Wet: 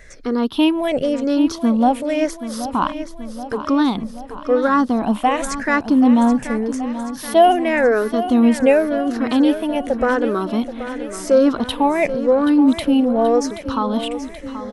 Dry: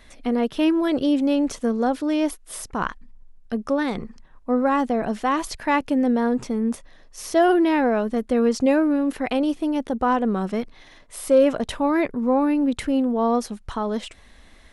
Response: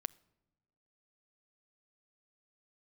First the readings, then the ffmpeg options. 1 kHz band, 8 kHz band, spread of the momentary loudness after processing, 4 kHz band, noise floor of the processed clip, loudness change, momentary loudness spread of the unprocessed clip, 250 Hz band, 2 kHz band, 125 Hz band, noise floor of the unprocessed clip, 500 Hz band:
+5.0 dB, +3.5 dB, 13 LU, +6.0 dB, -35 dBFS, +4.5 dB, 12 LU, +4.5 dB, +5.5 dB, no reading, -50 dBFS, +4.5 dB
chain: -filter_complex "[0:a]afftfilt=real='re*pow(10,14/40*sin(2*PI*(0.53*log(max(b,1)*sr/1024/100)/log(2)-(-0.9)*(pts-256)/sr)))':imag='im*pow(10,14/40*sin(2*PI*(0.53*log(max(b,1)*sr/1024/100)/log(2)-(-0.9)*(pts-256)/sr)))':win_size=1024:overlap=0.75,asplit=2[s0][s1];[s1]aecho=0:1:779|1558|2337|3116|3895|4674|5453:0.251|0.151|0.0904|0.0543|0.0326|0.0195|0.0117[s2];[s0][s2]amix=inputs=2:normalize=0,volume=1.33"

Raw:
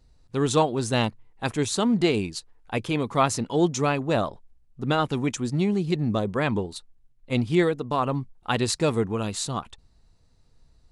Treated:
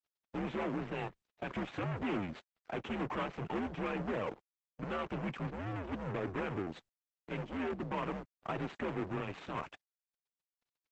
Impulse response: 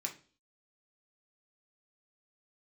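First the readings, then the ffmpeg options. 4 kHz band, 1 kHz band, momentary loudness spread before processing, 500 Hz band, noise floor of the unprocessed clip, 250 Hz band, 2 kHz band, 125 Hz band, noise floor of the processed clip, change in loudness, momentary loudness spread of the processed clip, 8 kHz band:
-19.0 dB, -12.5 dB, 10 LU, -14.0 dB, -59 dBFS, -13.5 dB, -10.5 dB, -14.5 dB, under -85 dBFS, -13.5 dB, 7 LU, under -30 dB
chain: -filter_complex "[0:a]asplit=2[s0][s1];[s1]acompressor=threshold=0.0316:ratio=8,volume=1.26[s2];[s0][s2]amix=inputs=2:normalize=0,aeval=exprs='(tanh(63.1*val(0)+0.6)-tanh(0.6))/63.1':c=same,highpass=f=230:t=q:w=0.5412,highpass=f=230:t=q:w=1.307,lowpass=f=2900:t=q:w=0.5176,lowpass=f=2900:t=q:w=0.7071,lowpass=f=2900:t=q:w=1.932,afreqshift=-91,aeval=exprs='sgn(val(0))*max(abs(val(0))-0.001,0)':c=same,volume=1.58" -ar 48000 -c:a libopus -b:a 10k

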